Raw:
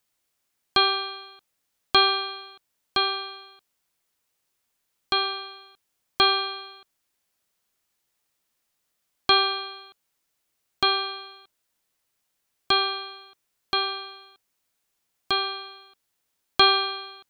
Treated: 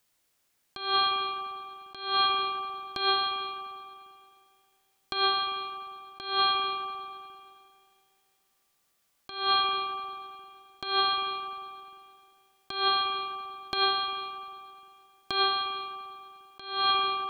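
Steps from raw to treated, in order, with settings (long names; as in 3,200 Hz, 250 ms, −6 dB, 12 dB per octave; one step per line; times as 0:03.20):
spring reverb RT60 2.5 s, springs 44/50 ms, chirp 70 ms, DRR 10 dB
compressor whose output falls as the input rises −26 dBFS, ratio −0.5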